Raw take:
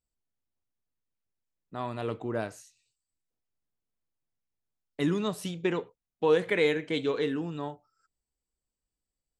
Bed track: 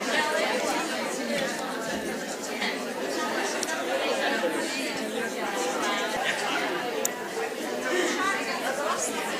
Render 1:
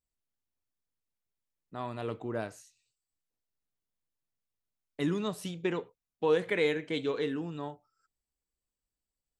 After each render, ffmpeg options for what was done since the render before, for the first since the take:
-af "volume=0.708"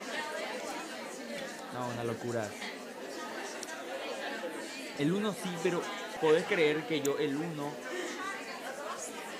-filter_complex "[1:a]volume=0.251[s0];[0:a][s0]amix=inputs=2:normalize=0"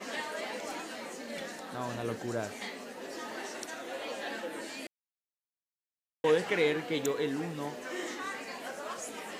-filter_complex "[0:a]asplit=3[s0][s1][s2];[s0]atrim=end=4.87,asetpts=PTS-STARTPTS,afade=t=out:st=4.866:d=0.004:c=hsin[s3];[s1]atrim=start=4.87:end=6.24,asetpts=PTS-STARTPTS,volume=0[s4];[s2]atrim=start=6.24,asetpts=PTS-STARTPTS,afade=t=in:d=0.004:c=hsin[s5];[s3][s4][s5]concat=n=3:v=0:a=1"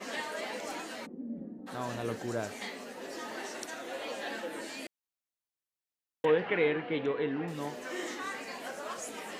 -filter_complex "[0:a]asplit=3[s0][s1][s2];[s0]afade=t=out:st=1.05:d=0.02[s3];[s1]lowpass=f=250:t=q:w=2.4,afade=t=in:st=1.05:d=0.02,afade=t=out:st=1.66:d=0.02[s4];[s2]afade=t=in:st=1.66:d=0.02[s5];[s3][s4][s5]amix=inputs=3:normalize=0,asettb=1/sr,asplit=3[s6][s7][s8];[s6]atrim=end=6.254[s9];[s7]atrim=start=6.25:end=7.48,asetpts=PTS-STARTPTS,afade=t=in:d=0.004:c=qsin,afade=t=out:st=1.226:d=0.004:c=qsin,lowpass=f=3000:w=0.5412,lowpass=f=3000:w=1.3066[s10];[s8]atrim=start=7.476[s11];[s9][s10]acrossfade=d=0.004:c1=hsin:c2=qsin[s12];[s12][s11]acrossfade=d=0.004:c1=qsin:c2=hsin"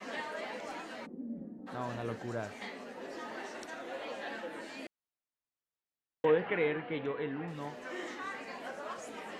-af "lowpass=f=2100:p=1,adynamicequalizer=threshold=0.00562:dfrequency=360:dqfactor=0.73:tfrequency=360:tqfactor=0.73:attack=5:release=100:ratio=0.375:range=3:mode=cutabove:tftype=bell"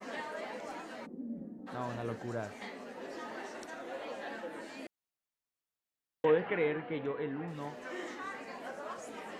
-af "adynamicequalizer=threshold=0.00251:dfrequency=3100:dqfactor=0.72:tfrequency=3100:tqfactor=0.72:attack=5:release=100:ratio=0.375:range=2.5:mode=cutabove:tftype=bell"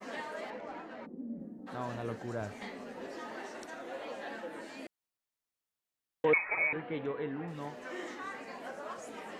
-filter_complex "[0:a]asettb=1/sr,asplit=3[s0][s1][s2];[s0]atrim=end=0.504[s3];[s1]atrim=start=0.5:end=1.4,asetpts=PTS-STARTPTS,afade=t=in:d=0.004:c=qsin,afade=t=out:st=0.896:d=0.004:c=qsin,adynamicsmooth=sensitivity=8:basefreq=2300[s4];[s2]atrim=start=1.396[s5];[s3][s4]acrossfade=d=0.004:c1=hsin:c2=qsin[s6];[s6][s5]acrossfade=d=0.004:c1=qsin:c2=hsin,asettb=1/sr,asplit=3[s7][s8][s9];[s7]atrim=end=2.414[s10];[s8]atrim=start=2.41:end=3.08,asetpts=PTS-STARTPTS,afade=t=in:d=0.004:c=qsin,afade=t=out:st=0.666:d=0.004:c=qsin,lowshelf=f=160:g=9[s11];[s9]atrim=start=3.076[s12];[s10][s11]acrossfade=d=0.004:c1=hsin:c2=qsin[s13];[s13][s12]acrossfade=d=0.004:c1=qsin:c2=hsin,asettb=1/sr,asplit=3[s14][s15][s16];[s14]atrim=end=6.334[s17];[s15]atrim=start=6.33:end=6.73,asetpts=PTS-STARTPTS,afade=t=in:d=0.004:c=qsin,afade=t=out:st=0.396:d=0.004:c=qsin,lowpass=f=2300:t=q:w=0.5098,lowpass=f=2300:t=q:w=0.6013,lowpass=f=2300:t=q:w=0.9,lowpass=f=2300:t=q:w=2.563,afreqshift=-2700[s18];[s16]atrim=start=6.726[s19];[s17][s18]acrossfade=d=0.004:c1=hsin:c2=qsin[s20];[s20][s19]acrossfade=d=0.004:c1=qsin:c2=hsin"

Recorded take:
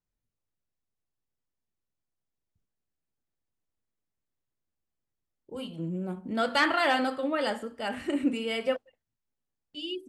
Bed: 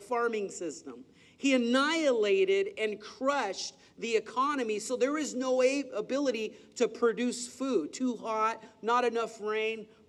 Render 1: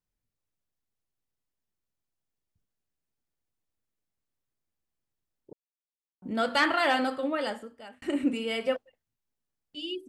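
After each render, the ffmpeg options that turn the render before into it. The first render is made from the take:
-filter_complex "[0:a]asplit=4[s0][s1][s2][s3];[s0]atrim=end=5.53,asetpts=PTS-STARTPTS,afade=t=out:st=5.526:d=0.004:c=hsin[s4];[s1]atrim=start=5.53:end=6.22,asetpts=PTS-STARTPTS,volume=0[s5];[s2]atrim=start=6.22:end=8.02,asetpts=PTS-STARTPTS,afade=t=in:d=0.004:c=hsin,afade=t=out:st=1.05:d=0.75[s6];[s3]atrim=start=8.02,asetpts=PTS-STARTPTS,afade=t=in:d=0.004:c=hsin[s7];[s4][s5][s6][s7]concat=n=4:v=0:a=1"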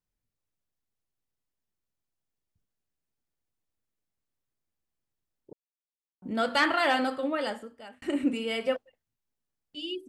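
-af anull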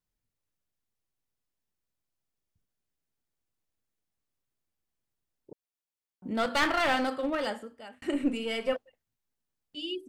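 -filter_complex "[0:a]asettb=1/sr,asplit=3[s0][s1][s2];[s0]atrim=end=6.364[s3];[s1]atrim=start=6.36:end=7.47,asetpts=PTS-STARTPTS,afade=t=in:d=0.004:c=qsin,afade=t=out:st=1.106:d=0.004:c=qsin,aeval=exprs='clip(val(0),-1,0.0376)':c=same[s4];[s2]atrim=start=7.466[s5];[s3][s4]acrossfade=d=0.004:c1=hsin:c2=qsin[s6];[s6][s5]acrossfade=d=0.004:c1=qsin:c2=hsin,asettb=1/sr,asplit=3[s7][s8][s9];[s7]atrim=end=8.134[s10];[s8]atrim=start=8.13:end=8.73,asetpts=PTS-STARTPTS,afade=t=in:d=0.004:c=qsin,afade=t=out:st=0.596:d=0.004:c=qsin,aeval=exprs='if(lt(val(0),0),0.708*val(0),val(0))':c=same[s11];[s9]atrim=start=8.726[s12];[s10][s11]acrossfade=d=0.004:c1=hsin:c2=qsin[s13];[s13][s12]acrossfade=d=0.004:c1=qsin:c2=hsin"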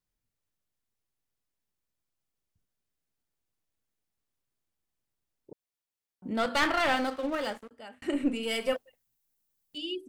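-filter_complex "[0:a]asettb=1/sr,asplit=3[s0][s1][s2];[s0]atrim=end=6.954[s3];[s1]atrim=start=6.95:end=7.71,asetpts=PTS-STARTPTS,afade=t=in:d=0.004:c=qsin,afade=t=out:st=0.756:d=0.004:c=qsin,aeval=exprs='sgn(val(0))*max(abs(val(0))-0.00501,0)':c=same[s4];[s2]atrim=start=7.706[s5];[s3][s4]acrossfade=d=0.004:c1=hsin:c2=qsin[s6];[s6][s5]acrossfade=d=0.004:c1=qsin:c2=hsin,asettb=1/sr,asplit=3[s7][s8][s9];[s7]atrim=end=8.434[s10];[s8]atrim=start=8.43:end=9.78,asetpts=PTS-STARTPTS,afade=t=in:d=0.004:c=qsin,afade=t=out:st=1.346:d=0.004:c=qsin,aemphasis=mode=production:type=50kf[s11];[s9]atrim=start=9.776[s12];[s10][s11]acrossfade=d=0.004:c1=hsin:c2=qsin[s13];[s13][s12]acrossfade=d=0.004:c1=qsin:c2=hsin"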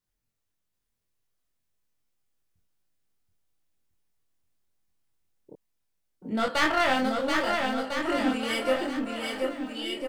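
-filter_complex "[0:a]asplit=2[s0][s1];[s1]adelay=23,volume=0.75[s2];[s0][s2]amix=inputs=2:normalize=0,aecho=1:1:730|1350|1878|2326|2707:0.631|0.398|0.251|0.158|0.1"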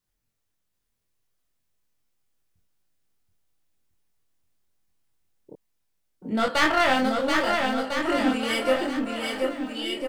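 -af "volume=1.41"

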